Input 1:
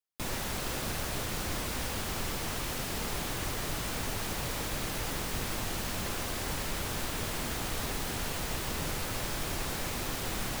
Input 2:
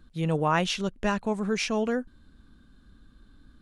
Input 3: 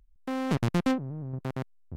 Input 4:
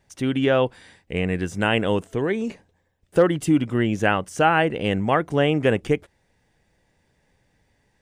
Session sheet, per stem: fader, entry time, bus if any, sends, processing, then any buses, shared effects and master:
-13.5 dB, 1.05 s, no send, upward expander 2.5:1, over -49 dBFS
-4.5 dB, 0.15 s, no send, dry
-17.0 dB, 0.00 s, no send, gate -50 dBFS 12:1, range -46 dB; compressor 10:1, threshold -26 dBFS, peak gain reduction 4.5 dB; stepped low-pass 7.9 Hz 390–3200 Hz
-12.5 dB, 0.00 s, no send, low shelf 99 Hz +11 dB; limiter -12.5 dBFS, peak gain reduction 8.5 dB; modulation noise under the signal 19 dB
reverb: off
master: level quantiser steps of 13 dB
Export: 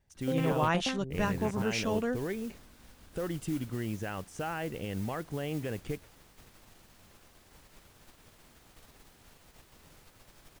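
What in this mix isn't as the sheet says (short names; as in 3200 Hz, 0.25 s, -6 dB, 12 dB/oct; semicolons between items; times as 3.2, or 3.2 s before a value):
stem 1 -13.5 dB -> -19.5 dB; stem 3 -17.0 dB -> -7.5 dB; master: missing level quantiser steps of 13 dB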